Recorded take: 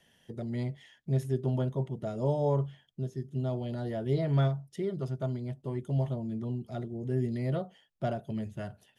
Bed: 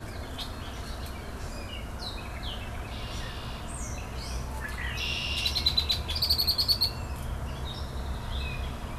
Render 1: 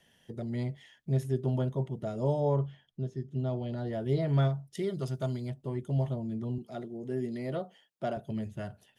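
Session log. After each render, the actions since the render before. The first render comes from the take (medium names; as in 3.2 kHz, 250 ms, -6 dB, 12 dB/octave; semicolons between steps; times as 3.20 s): 2.40–3.93 s: distance through air 66 m; 4.75–5.50 s: treble shelf 2.7 kHz +11 dB; 6.58–8.17 s: high-pass 210 Hz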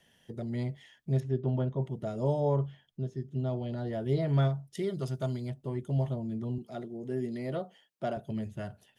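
1.20–1.83 s: distance through air 190 m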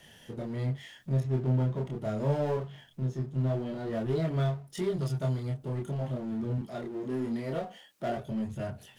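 power-law waveshaper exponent 0.7; chorus voices 2, 0.23 Hz, delay 27 ms, depth 4.8 ms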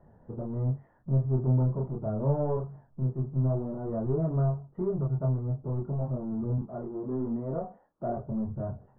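steep low-pass 1.2 kHz 36 dB/octave; bass shelf 71 Hz +11 dB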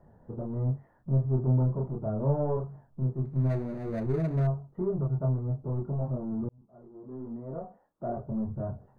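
3.25–4.47 s: median filter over 41 samples; 6.49–8.40 s: fade in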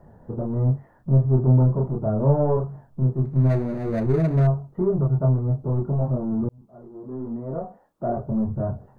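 trim +8 dB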